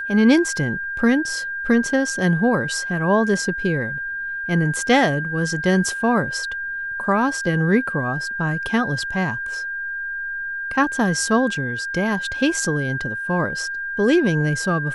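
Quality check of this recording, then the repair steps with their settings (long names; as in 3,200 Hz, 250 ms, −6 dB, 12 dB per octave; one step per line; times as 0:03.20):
whistle 1,600 Hz −25 dBFS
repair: notch filter 1,600 Hz, Q 30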